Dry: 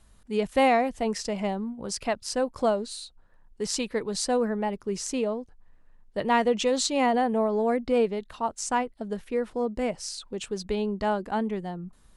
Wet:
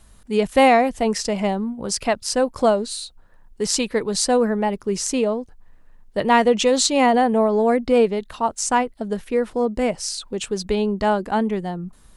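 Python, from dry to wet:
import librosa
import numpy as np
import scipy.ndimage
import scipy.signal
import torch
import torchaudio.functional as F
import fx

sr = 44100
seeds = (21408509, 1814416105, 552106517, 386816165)

y = fx.high_shelf(x, sr, hz=9400.0, db=5.0)
y = F.gain(torch.from_numpy(y), 7.0).numpy()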